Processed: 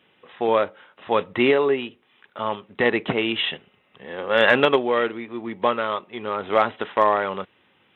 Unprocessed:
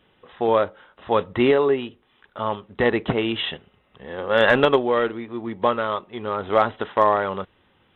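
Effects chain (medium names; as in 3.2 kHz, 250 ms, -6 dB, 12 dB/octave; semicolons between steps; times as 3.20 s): high-pass 140 Hz 12 dB/octave; peaking EQ 2.4 kHz +6.5 dB 0.71 oct; trim -1 dB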